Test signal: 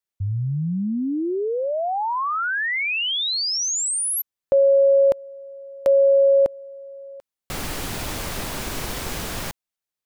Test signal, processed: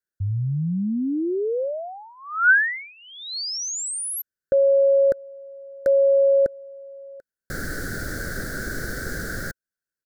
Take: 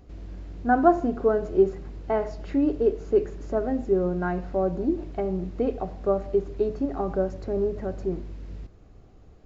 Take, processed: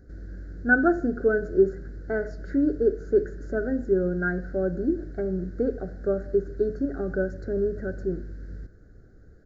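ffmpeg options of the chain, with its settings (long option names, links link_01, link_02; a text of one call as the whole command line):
ffmpeg -i in.wav -af "firequalizer=gain_entry='entry(520,0);entry(1000,-25);entry(1500,12);entry(2600,-27);entry(4300,-5)':delay=0.05:min_phase=1" out.wav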